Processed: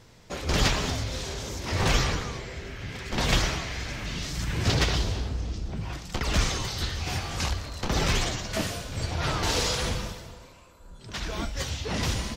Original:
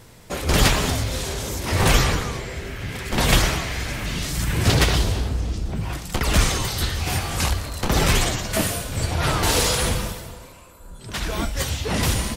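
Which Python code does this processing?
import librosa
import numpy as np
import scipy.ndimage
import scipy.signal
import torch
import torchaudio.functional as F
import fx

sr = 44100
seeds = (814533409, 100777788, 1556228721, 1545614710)

y = fx.high_shelf_res(x, sr, hz=7700.0, db=-8.5, q=1.5)
y = F.gain(torch.from_numpy(y), -6.5).numpy()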